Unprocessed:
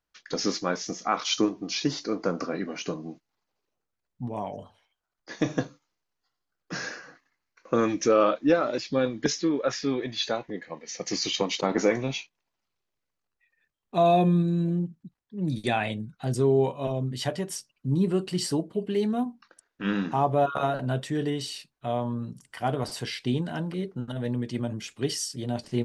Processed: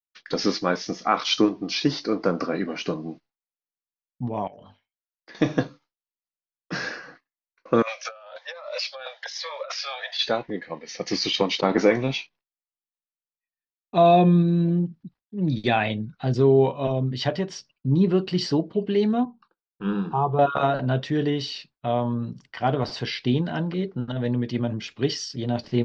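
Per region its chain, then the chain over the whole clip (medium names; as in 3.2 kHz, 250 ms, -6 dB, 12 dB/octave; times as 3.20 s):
4.47–5.35 s: peaking EQ 2.2 kHz +5.5 dB 1.3 oct + hum notches 50/100/150/200/250/300 Hz + compression 12:1, threshold -46 dBFS
7.82–10.19 s: steep high-pass 540 Hz 96 dB/octave + compressor with a negative ratio -37 dBFS + Shepard-style phaser rising 1.1 Hz
19.25–20.39 s: distance through air 280 m + static phaser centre 400 Hz, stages 8
whole clip: expander -50 dBFS; steep low-pass 5.3 kHz 36 dB/octave; trim +4.5 dB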